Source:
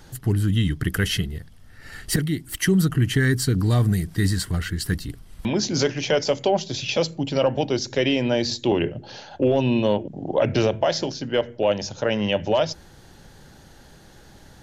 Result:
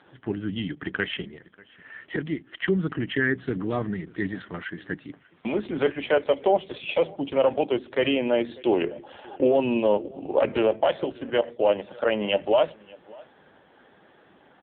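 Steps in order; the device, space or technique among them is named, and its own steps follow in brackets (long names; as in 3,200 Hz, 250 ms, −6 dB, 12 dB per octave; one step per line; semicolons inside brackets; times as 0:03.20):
0:03.05–0:04.48: high-pass filter 47 Hz 12 dB per octave
satellite phone (band-pass filter 300–3,100 Hz; single-tap delay 591 ms −23.5 dB; level +1.5 dB; AMR narrowband 5.9 kbit/s 8,000 Hz)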